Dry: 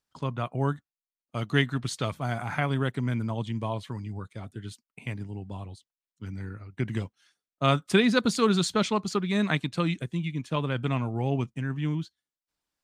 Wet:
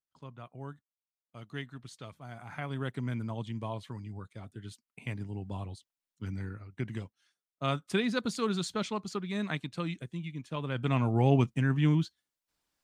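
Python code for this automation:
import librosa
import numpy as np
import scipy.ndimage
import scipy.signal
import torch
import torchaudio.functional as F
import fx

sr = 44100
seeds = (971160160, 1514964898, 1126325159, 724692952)

y = fx.gain(x, sr, db=fx.line((2.25, -16.0), (2.95, -6.0), (4.54, -6.0), (5.6, 0.0), (6.32, 0.0), (7.01, -8.0), (10.57, -8.0), (11.13, 3.5)))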